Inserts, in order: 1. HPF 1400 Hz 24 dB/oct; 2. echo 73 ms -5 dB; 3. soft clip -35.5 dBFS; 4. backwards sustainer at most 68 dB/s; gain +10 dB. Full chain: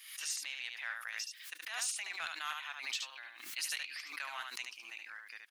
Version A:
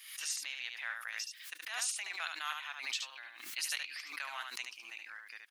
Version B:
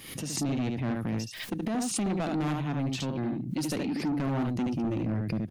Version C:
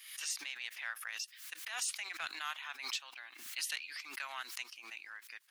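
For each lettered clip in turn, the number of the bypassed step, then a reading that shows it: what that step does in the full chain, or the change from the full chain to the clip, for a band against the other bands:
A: 3, distortion -21 dB; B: 1, crest factor change -11.0 dB; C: 2, 250 Hz band +3.5 dB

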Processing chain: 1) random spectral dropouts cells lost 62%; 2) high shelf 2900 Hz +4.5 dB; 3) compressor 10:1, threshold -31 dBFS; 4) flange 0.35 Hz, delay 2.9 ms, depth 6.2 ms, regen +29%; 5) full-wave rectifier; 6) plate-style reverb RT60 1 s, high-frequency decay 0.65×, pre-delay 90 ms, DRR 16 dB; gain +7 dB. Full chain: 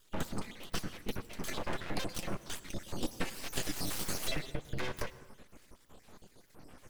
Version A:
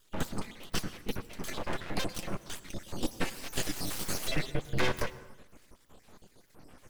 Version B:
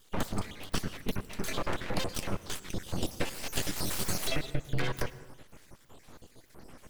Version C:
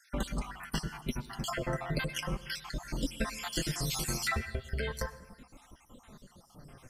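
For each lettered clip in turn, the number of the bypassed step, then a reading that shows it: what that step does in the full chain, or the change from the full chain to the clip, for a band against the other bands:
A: 3, mean gain reduction 1.5 dB; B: 4, momentary loudness spread change -1 LU; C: 5, 125 Hz band +3.5 dB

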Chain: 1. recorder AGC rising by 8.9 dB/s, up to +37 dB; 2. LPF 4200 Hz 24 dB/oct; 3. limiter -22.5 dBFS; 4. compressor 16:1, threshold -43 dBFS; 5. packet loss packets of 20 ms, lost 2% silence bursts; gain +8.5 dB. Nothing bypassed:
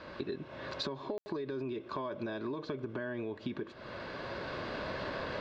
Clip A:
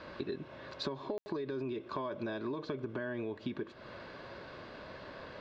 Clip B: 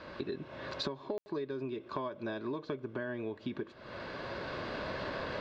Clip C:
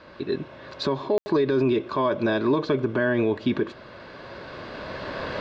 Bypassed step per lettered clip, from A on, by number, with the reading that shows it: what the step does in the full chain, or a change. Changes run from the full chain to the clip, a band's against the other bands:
1, crest factor change +1.5 dB; 3, mean gain reduction 1.5 dB; 4, mean gain reduction 9.0 dB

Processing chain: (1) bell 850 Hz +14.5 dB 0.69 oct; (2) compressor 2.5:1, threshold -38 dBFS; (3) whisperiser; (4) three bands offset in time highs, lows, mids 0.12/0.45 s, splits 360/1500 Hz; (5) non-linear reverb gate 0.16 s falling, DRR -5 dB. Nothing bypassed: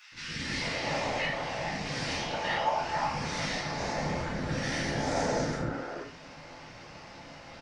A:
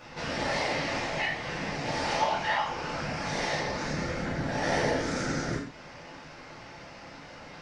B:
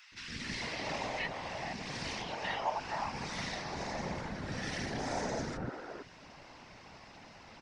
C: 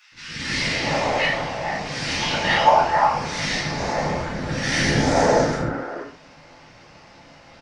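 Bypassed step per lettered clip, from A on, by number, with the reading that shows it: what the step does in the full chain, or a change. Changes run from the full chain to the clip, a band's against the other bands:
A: 4, echo-to-direct 8.0 dB to 5.0 dB; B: 5, echo-to-direct 8.0 dB to -0.5 dB; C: 2, mean gain reduction 6.0 dB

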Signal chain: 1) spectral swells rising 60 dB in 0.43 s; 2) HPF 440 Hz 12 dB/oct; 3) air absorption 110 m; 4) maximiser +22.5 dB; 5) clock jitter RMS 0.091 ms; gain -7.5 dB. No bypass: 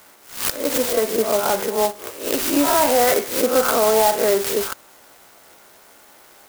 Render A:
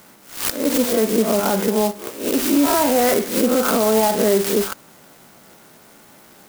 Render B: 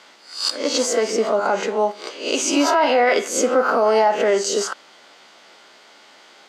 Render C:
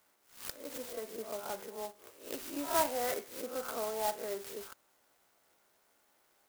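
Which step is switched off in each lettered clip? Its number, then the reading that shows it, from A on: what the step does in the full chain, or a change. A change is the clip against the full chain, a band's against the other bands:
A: 2, 125 Hz band +9.5 dB; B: 5, 2 kHz band +2.0 dB; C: 4, crest factor change +9.0 dB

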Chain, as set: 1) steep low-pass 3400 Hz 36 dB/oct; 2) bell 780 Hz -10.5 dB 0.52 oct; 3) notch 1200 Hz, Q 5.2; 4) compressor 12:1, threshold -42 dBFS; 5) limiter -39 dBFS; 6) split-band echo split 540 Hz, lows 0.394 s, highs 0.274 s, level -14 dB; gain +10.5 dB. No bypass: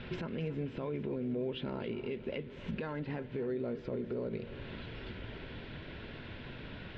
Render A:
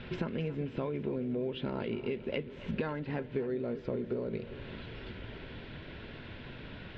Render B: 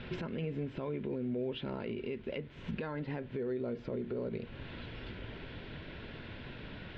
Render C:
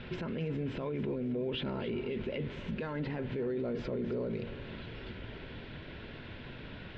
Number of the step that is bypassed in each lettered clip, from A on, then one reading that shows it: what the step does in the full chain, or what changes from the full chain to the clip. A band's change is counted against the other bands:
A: 5, crest factor change +6.0 dB; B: 6, echo-to-direct -12.5 dB to none; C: 4, mean gain reduction 9.0 dB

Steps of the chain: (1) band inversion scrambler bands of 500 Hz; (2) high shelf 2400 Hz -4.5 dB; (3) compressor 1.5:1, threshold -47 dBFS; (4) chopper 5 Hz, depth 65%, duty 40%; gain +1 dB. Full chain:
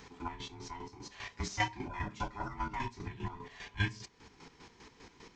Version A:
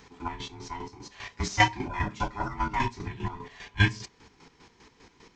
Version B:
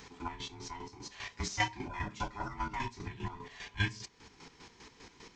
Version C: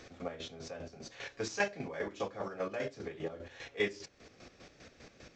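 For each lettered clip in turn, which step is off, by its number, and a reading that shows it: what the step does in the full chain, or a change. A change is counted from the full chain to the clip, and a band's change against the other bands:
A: 3, mean gain reduction 5.0 dB; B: 2, 8 kHz band +3.5 dB; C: 1, 500 Hz band +12.5 dB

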